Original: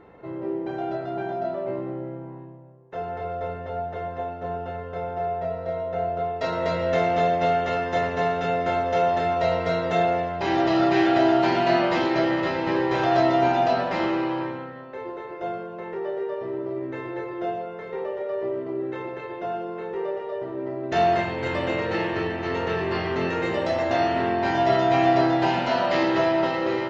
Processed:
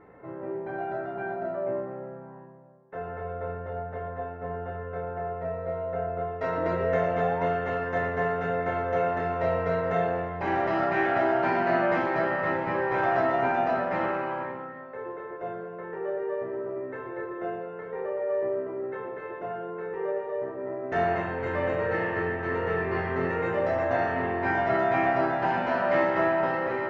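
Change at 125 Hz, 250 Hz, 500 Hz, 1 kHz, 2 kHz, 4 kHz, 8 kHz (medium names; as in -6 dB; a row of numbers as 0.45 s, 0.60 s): -3.0 dB, -7.5 dB, -3.0 dB, -4.0 dB, -0.5 dB, -14.0 dB, no reading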